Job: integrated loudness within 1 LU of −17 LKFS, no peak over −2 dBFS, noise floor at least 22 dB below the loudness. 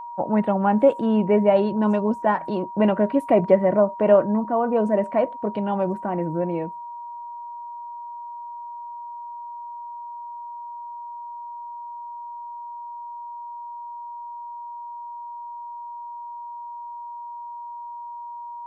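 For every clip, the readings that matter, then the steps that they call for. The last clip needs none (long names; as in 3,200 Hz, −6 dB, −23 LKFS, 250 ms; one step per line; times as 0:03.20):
interfering tone 950 Hz; level of the tone −33 dBFS; integrated loudness −21.0 LKFS; sample peak −4.5 dBFS; target loudness −17.0 LKFS
→ notch filter 950 Hz, Q 30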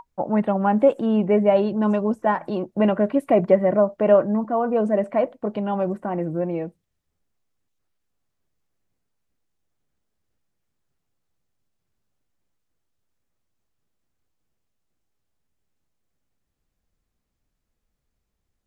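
interfering tone none found; integrated loudness −21.0 LKFS; sample peak −4.5 dBFS; target loudness −17.0 LKFS
→ level +4 dB
brickwall limiter −2 dBFS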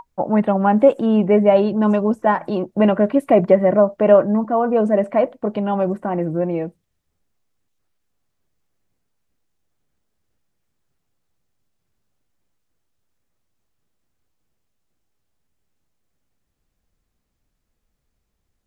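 integrated loudness −17.5 LKFS; sample peak −2.0 dBFS; background noise floor −74 dBFS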